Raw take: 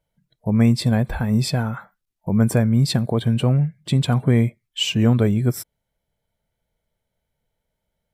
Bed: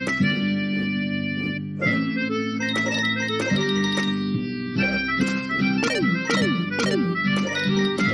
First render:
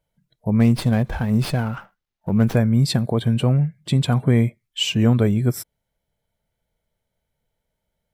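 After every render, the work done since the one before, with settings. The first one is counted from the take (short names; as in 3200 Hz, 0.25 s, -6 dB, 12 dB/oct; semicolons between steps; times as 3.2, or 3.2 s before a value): 0.6–2.56 running maximum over 5 samples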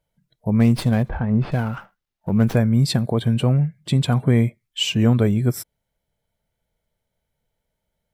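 1.09–1.52 LPF 1700 Hz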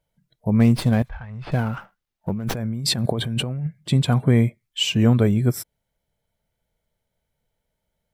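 1.02–1.47 passive tone stack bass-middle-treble 10-0-10; 2.3–3.67 negative-ratio compressor -25 dBFS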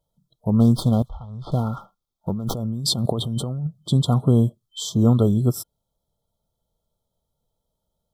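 FFT band-reject 1400–3100 Hz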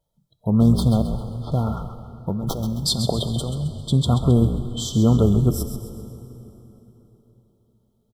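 frequency-shifting echo 0.133 s, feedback 42%, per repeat -51 Hz, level -9.5 dB; plate-style reverb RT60 3.8 s, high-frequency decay 0.7×, DRR 11.5 dB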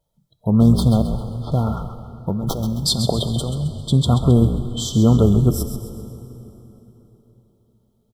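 gain +2.5 dB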